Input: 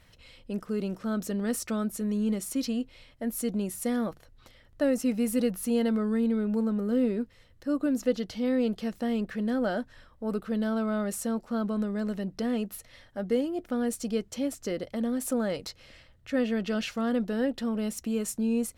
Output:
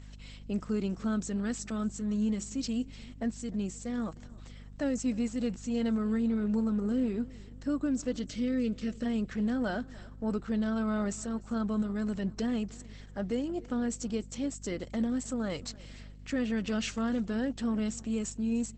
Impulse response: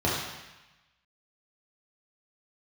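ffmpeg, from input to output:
-filter_complex "[0:a]acrossover=split=7200[a][b];[b]crystalizer=i=3.5:c=0[c];[a][c]amix=inputs=2:normalize=0,equalizer=f=520:t=o:w=0.79:g=-5,asplit=2[d][e];[e]aeval=exprs='0.0944*(abs(mod(val(0)/0.0944+3,4)-2)-1)':c=same,volume=-5dB[f];[d][f]amix=inputs=2:normalize=0,asplit=3[g][h][i];[g]afade=t=out:st=8.22:d=0.02[j];[h]asuperstop=centerf=890:order=20:qfactor=1.7,afade=t=in:st=8.22:d=0.02,afade=t=out:st=9.04:d=0.02[k];[i]afade=t=in:st=9.04:d=0.02[l];[j][k][l]amix=inputs=3:normalize=0,alimiter=limit=-20.5dB:level=0:latency=1:release=478,aecho=1:1:300|600|900:0.0841|0.0294|0.0103,aeval=exprs='val(0)+0.00631*(sin(2*PI*50*n/s)+sin(2*PI*2*50*n/s)/2+sin(2*PI*3*50*n/s)/3+sin(2*PI*4*50*n/s)/4+sin(2*PI*5*50*n/s)/5)':c=same,volume=-2dB" -ar 48000 -c:a libopus -b:a 12k

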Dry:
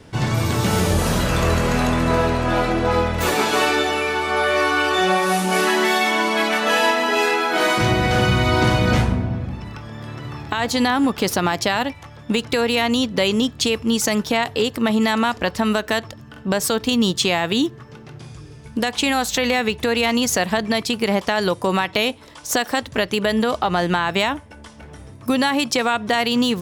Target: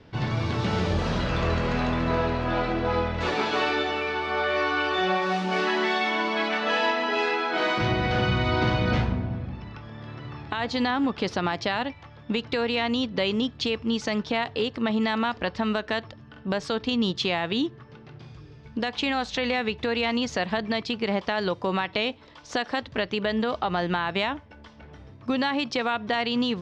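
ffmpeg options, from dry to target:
-af "lowpass=f=4.8k:w=0.5412,lowpass=f=4.8k:w=1.3066,volume=-6.5dB"

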